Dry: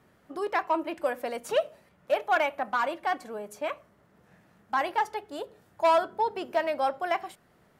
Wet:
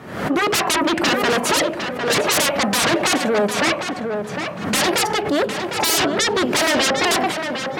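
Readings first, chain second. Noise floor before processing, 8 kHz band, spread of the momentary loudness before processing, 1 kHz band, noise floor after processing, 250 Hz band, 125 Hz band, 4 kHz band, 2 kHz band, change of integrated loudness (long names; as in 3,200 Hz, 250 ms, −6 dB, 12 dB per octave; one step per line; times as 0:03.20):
−64 dBFS, +29.0 dB, 15 LU, +6.0 dB, −29 dBFS, +18.0 dB, can't be measured, +22.5 dB, +13.5 dB, +10.5 dB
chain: high-shelf EQ 7,000 Hz −10.5 dB
sine wavefolder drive 19 dB, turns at −15 dBFS
tape delay 756 ms, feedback 22%, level −4 dB, low-pass 3,000 Hz
dynamic equaliser 180 Hz, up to +4 dB, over −39 dBFS, Q 1.1
high-pass filter 98 Hz 12 dB per octave
background raised ahead of every attack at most 75 dB per second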